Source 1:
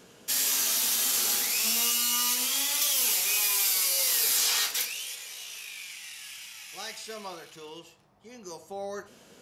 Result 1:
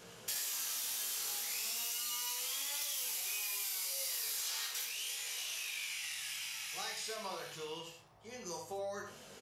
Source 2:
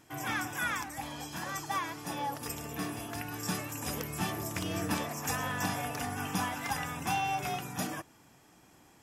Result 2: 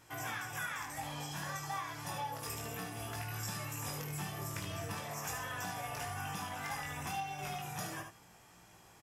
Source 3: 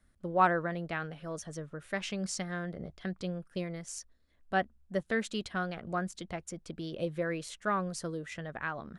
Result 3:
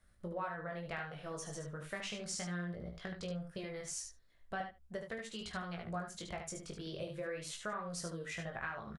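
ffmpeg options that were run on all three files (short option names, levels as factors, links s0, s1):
-filter_complex "[0:a]flanger=delay=17.5:depth=3.3:speed=0.36,asplit=2[s0][s1];[s1]aecho=0:1:75:0.0794[s2];[s0][s2]amix=inputs=2:normalize=0,acompressor=threshold=0.00891:ratio=8,equalizer=f=270:w=2:g=-9.5,asplit=2[s3][s4];[s4]aecho=0:1:28|74:0.282|0.473[s5];[s3][s5]amix=inputs=2:normalize=0,volume=1.5"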